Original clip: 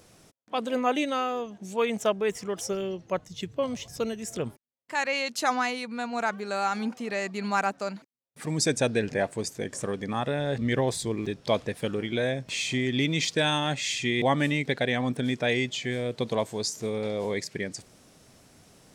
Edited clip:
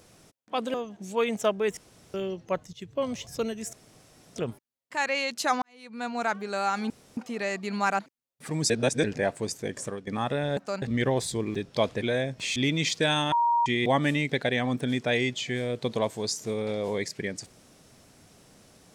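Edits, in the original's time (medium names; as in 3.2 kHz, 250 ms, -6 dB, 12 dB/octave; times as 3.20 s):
0.74–1.35 s: delete
2.38–2.75 s: room tone
3.34–3.64 s: fade in, from -13 dB
4.34 s: insert room tone 0.63 s
5.60–6.03 s: fade in quadratic
6.88 s: insert room tone 0.27 s
7.70–7.95 s: move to 10.53 s
8.66–9.00 s: reverse
9.75–10.03 s: fade out, to -14 dB
11.73–12.11 s: delete
12.65–12.92 s: delete
13.68–14.02 s: bleep 943 Hz -20 dBFS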